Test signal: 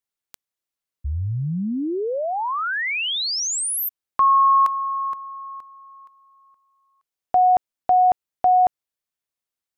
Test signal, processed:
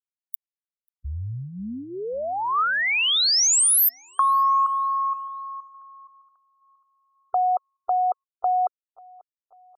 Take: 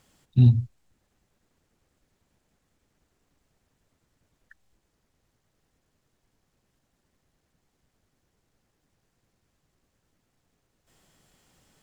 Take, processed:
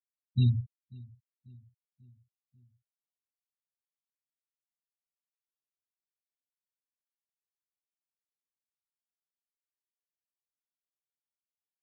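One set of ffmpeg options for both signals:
ffmpeg -i in.wav -filter_complex "[0:a]equalizer=frequency=160:width_type=o:width=0.33:gain=-9,equalizer=frequency=315:width_type=o:width=0.33:gain=-10,equalizer=frequency=1250:width_type=o:width=0.33:gain=8,crystalizer=i=7:c=0,acompressor=threshold=-15dB:ratio=4:attack=40:release=73:knee=6:detection=rms,afftfilt=real='re*gte(hypot(re,im),0.0708)':imag='im*gte(hypot(re,im),0.0708)':win_size=1024:overlap=0.75,asplit=2[link_01][link_02];[link_02]adelay=541,lowpass=frequency=2300:poles=1,volume=-23dB,asplit=2[link_03][link_04];[link_04]adelay=541,lowpass=frequency=2300:poles=1,volume=0.53,asplit=2[link_05][link_06];[link_06]adelay=541,lowpass=frequency=2300:poles=1,volume=0.53,asplit=2[link_07][link_08];[link_08]adelay=541,lowpass=frequency=2300:poles=1,volume=0.53[link_09];[link_03][link_05][link_07][link_09]amix=inputs=4:normalize=0[link_10];[link_01][link_10]amix=inputs=2:normalize=0,volume=-5dB" out.wav

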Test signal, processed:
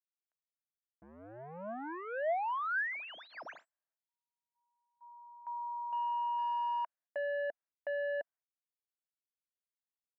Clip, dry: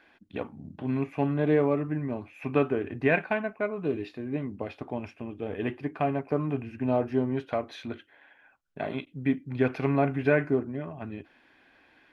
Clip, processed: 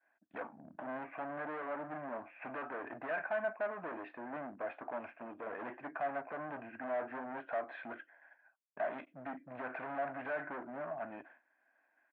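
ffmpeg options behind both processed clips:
ffmpeg -i in.wav -af "agate=range=-33dB:threshold=-49dB:ratio=3:detection=peak,alimiter=limit=-18.5dB:level=0:latency=1:release=183,aresample=16000,asoftclip=type=hard:threshold=-36dB,aresample=44100,highpass=370,equalizer=frequency=410:width_type=q:width=4:gain=-9,equalizer=frequency=660:width_type=q:width=4:gain=9,equalizer=frequency=970:width_type=q:width=4:gain=3,equalizer=frequency=1600:width_type=q:width=4:gain=7,lowpass=frequency=2100:width=0.5412,lowpass=frequency=2100:width=1.3066,volume=-1dB" out.wav

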